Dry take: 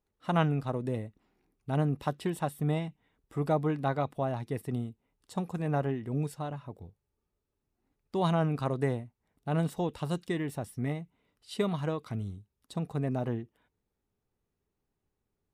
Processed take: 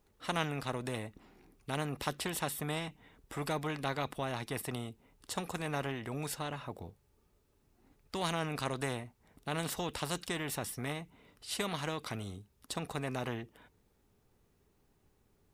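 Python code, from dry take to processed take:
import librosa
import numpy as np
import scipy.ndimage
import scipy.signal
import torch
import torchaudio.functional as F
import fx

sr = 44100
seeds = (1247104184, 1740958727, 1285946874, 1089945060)

y = fx.spectral_comp(x, sr, ratio=2.0)
y = y * 10.0 ** (-3.0 / 20.0)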